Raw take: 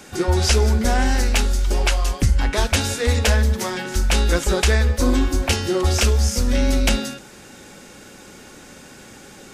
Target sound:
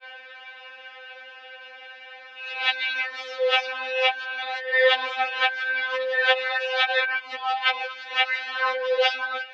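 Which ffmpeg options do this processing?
-af "areverse,highpass=f=540:t=q:w=0.5412,highpass=f=540:t=q:w=1.307,lowpass=f=3.5k:t=q:w=0.5176,lowpass=f=3.5k:t=q:w=0.7071,lowpass=f=3.5k:t=q:w=1.932,afreqshift=78,afftfilt=real='re*3.46*eq(mod(b,12),0)':imag='im*3.46*eq(mod(b,12),0)':win_size=2048:overlap=0.75,volume=6.5dB"

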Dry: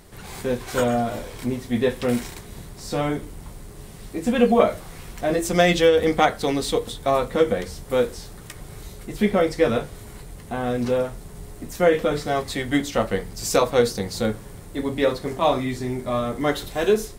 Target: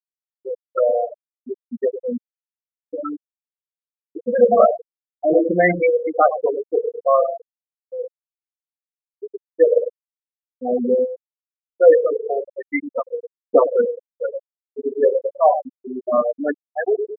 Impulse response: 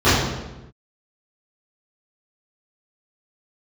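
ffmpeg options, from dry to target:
-filter_complex "[0:a]agate=range=-9dB:threshold=-32dB:ratio=16:detection=peak,bass=f=250:g=-11,treble=f=4k:g=-10,asplit=3[a][b][c];[a]afade=t=out:st=7.26:d=0.02[d];[b]acompressor=threshold=-32dB:ratio=5,afade=t=in:st=7.26:d=0.02,afade=t=out:st=9.55:d=0.02[e];[c]afade=t=in:st=9.55:d=0.02[f];[d][e][f]amix=inputs=3:normalize=0,afftfilt=real='re*gte(hypot(re,im),0.0224)':imag='im*gte(hypot(re,im),0.0224)':win_size=1024:overlap=0.75,asplit=2[g][h];[h]adelay=102,lowpass=f=1.2k:p=1,volume=-7dB,asplit=2[i][j];[j]adelay=102,lowpass=f=1.2k:p=1,volume=0.52,asplit=2[k][l];[l]adelay=102,lowpass=f=1.2k:p=1,volume=0.52,asplit=2[m][n];[n]adelay=102,lowpass=f=1.2k:p=1,volume=0.52,asplit=2[o][p];[p]adelay=102,lowpass=f=1.2k:p=1,volume=0.52,asplit=2[q][r];[r]adelay=102,lowpass=f=1.2k:p=1,volume=0.52[s];[g][i][k][m][o][q][s]amix=inputs=7:normalize=0,acontrast=25,aeval=exprs='val(0)+0.00355*(sin(2*PI*60*n/s)+sin(2*PI*2*60*n/s)/2+sin(2*PI*3*60*n/s)/3+sin(2*PI*4*60*n/s)/4+sin(2*PI*5*60*n/s)/5)':c=same,aphaser=in_gain=1:out_gain=1:delay=2.6:decay=0.48:speed=0.37:type=triangular,afftfilt=real='re*gte(hypot(re,im),0.562)':imag='im*gte(hypot(re,im),0.562)':win_size=1024:overlap=0.75,highshelf=f=4.5k:g=10,volume=-1dB"

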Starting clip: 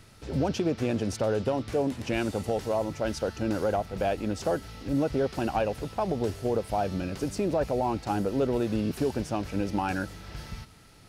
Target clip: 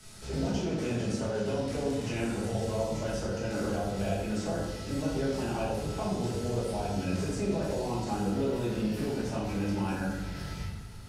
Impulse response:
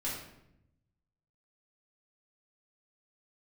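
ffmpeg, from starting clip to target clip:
-filter_complex "[0:a]asetnsamples=n=441:p=0,asendcmd='8.29 equalizer g 3',equalizer=f=7.9k:t=o:w=1.7:g=12.5,acrossover=split=240|560|2200|5400[a][b][c][d][e];[a]acompressor=threshold=-38dB:ratio=4[f];[b]acompressor=threshold=-38dB:ratio=4[g];[c]acompressor=threshold=-40dB:ratio=4[h];[d]acompressor=threshold=-50dB:ratio=4[i];[e]acompressor=threshold=-53dB:ratio=4[j];[f][g][h][i][j]amix=inputs=5:normalize=0[k];[1:a]atrim=start_sample=2205,asetrate=31752,aresample=44100[l];[k][l]afir=irnorm=-1:irlink=0,volume=-3.5dB"

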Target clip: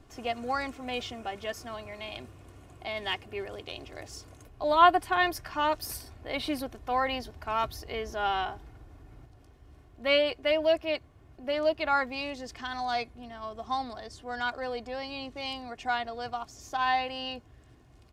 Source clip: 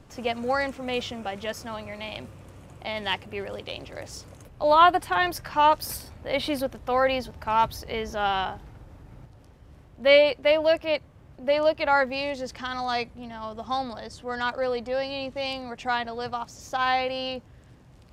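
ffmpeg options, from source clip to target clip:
-af "aecho=1:1:2.8:0.51,volume=-5dB"

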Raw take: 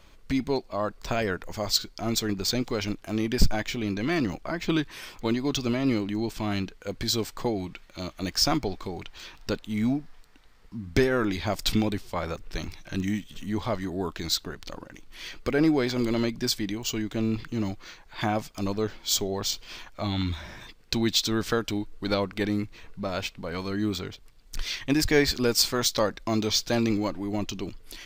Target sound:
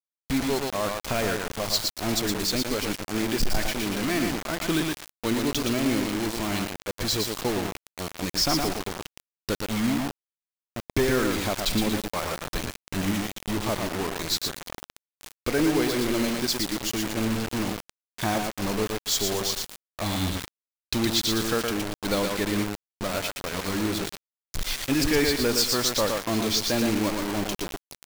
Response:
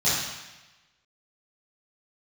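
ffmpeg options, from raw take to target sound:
-filter_complex "[0:a]asplit=2[a][b];[b]aecho=0:1:116|232|348|464:0.562|0.163|0.0473|0.0137[c];[a][c]amix=inputs=2:normalize=0,adynamicequalizer=threshold=0.0141:dfrequency=110:dqfactor=0.81:tfrequency=110:tqfactor=0.81:attack=5:release=100:ratio=0.375:range=2:mode=cutabove:tftype=bell,acrusher=bits=4:mix=0:aa=0.000001,asoftclip=type=hard:threshold=-17dB"

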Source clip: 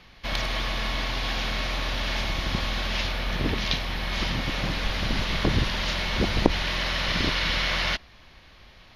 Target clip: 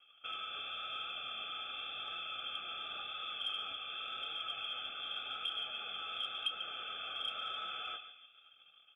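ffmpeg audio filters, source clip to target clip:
-filter_complex "[0:a]acrossover=split=720|1800[a][b][c];[a]acompressor=threshold=-39dB:ratio=4[d];[b]acompressor=threshold=-44dB:ratio=4[e];[c]acompressor=threshold=-34dB:ratio=4[f];[d][e][f]amix=inputs=3:normalize=0,asplit=2[g][h];[h]aeval=exprs='sgn(val(0))*max(abs(val(0))-0.00251,0)':c=same,volume=-7dB[i];[g][i]amix=inputs=2:normalize=0,acontrast=67,acrusher=bits=6:dc=4:mix=0:aa=0.000001,asplit=3[j][k][l];[j]bandpass=f=300:t=q:w=8,volume=0dB[m];[k]bandpass=f=870:t=q:w=8,volume=-6dB[n];[l]bandpass=f=2.24k:t=q:w=8,volume=-9dB[o];[m][n][o]amix=inputs=3:normalize=0,aemphasis=mode=reproduction:type=bsi,asplit=2[p][q];[q]adelay=29,volume=-10.5dB[r];[p][r]amix=inputs=2:normalize=0,asplit=2[s][t];[t]adelay=142,lowpass=f=2.1k:p=1,volume=-9dB,asplit=2[u][v];[v]adelay=142,lowpass=f=2.1k:p=1,volume=0.47,asplit=2[w][x];[x]adelay=142,lowpass=f=2.1k:p=1,volume=0.47,asplit=2[y][z];[z]adelay=142,lowpass=f=2.1k:p=1,volume=0.47,asplit=2[aa][ab];[ab]adelay=142,lowpass=f=2.1k:p=1,volume=0.47[ac];[s][u][w][y][aa][ac]amix=inputs=6:normalize=0,lowpass=f=3k:t=q:w=0.5098,lowpass=f=3k:t=q:w=0.6013,lowpass=f=3k:t=q:w=0.9,lowpass=f=3k:t=q:w=2.563,afreqshift=-3500,asoftclip=type=tanh:threshold=-21.5dB,flanger=delay=5.4:depth=6.9:regen=64:speed=0.91:shape=triangular,asuperstop=centerf=1000:order=12:qfactor=3.3,volume=1.5dB"

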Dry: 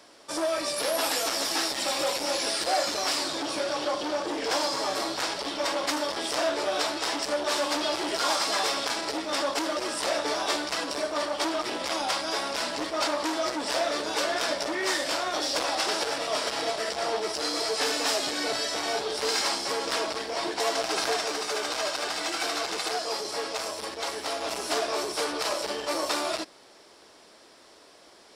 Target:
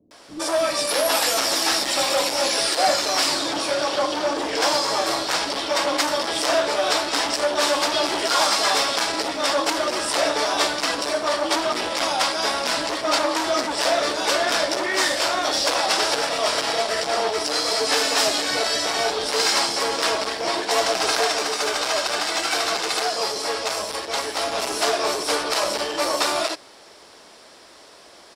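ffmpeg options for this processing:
-filter_complex "[0:a]acrossover=split=320[a][b];[b]adelay=110[c];[a][c]amix=inputs=2:normalize=0,volume=7dB"

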